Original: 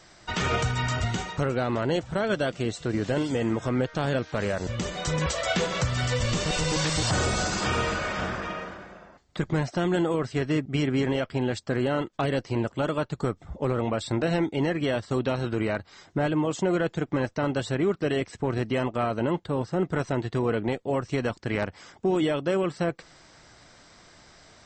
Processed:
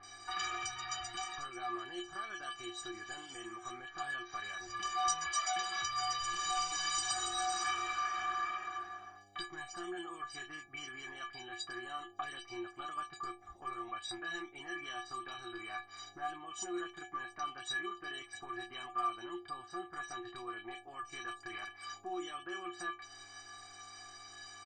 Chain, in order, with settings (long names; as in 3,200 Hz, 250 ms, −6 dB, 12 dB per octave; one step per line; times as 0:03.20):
hum with harmonics 100 Hz, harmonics 8, −45 dBFS −4 dB per octave
downward compressor 3 to 1, threshold −35 dBFS, peak gain reduction 11 dB
low shelf with overshoot 760 Hz −14 dB, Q 1.5
stiff-string resonator 350 Hz, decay 0.33 s, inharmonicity 0.03
multiband delay without the direct sound lows, highs 30 ms, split 2,300 Hz
level +18 dB